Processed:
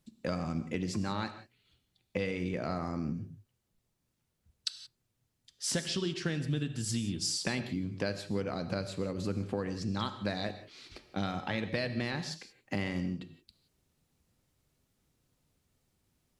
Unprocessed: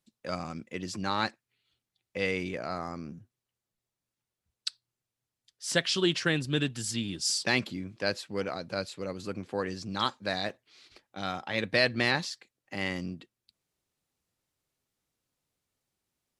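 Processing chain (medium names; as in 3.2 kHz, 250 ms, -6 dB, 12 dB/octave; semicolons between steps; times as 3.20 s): bass shelf 290 Hz +11.5 dB; compression 12:1, threshold -34 dBFS, peak gain reduction 18 dB; on a send: reverberation, pre-delay 3 ms, DRR 9.5 dB; on the sum: trim +4 dB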